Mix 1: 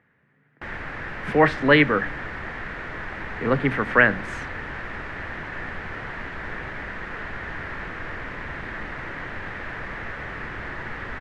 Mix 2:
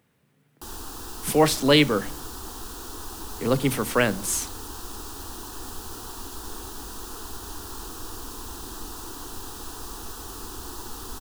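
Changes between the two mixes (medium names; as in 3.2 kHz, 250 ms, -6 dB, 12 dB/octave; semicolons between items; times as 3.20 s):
background: add static phaser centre 580 Hz, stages 6; master: remove resonant low-pass 1.8 kHz, resonance Q 4.1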